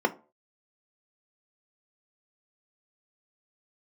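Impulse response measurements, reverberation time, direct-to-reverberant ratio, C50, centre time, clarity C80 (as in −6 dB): 0.40 s, 7.0 dB, 19.0 dB, 5 ms, 24.5 dB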